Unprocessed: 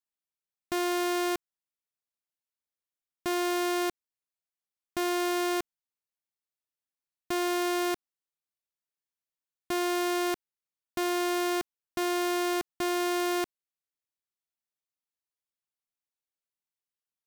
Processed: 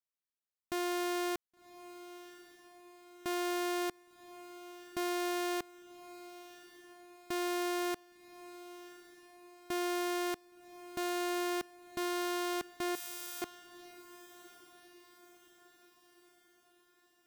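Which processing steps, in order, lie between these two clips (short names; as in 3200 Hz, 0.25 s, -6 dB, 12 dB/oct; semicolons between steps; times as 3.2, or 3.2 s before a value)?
12.95–13.42 pre-emphasis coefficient 0.97; on a send: diffused feedback echo 1.108 s, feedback 51%, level -16 dB; on the sum: gain -6 dB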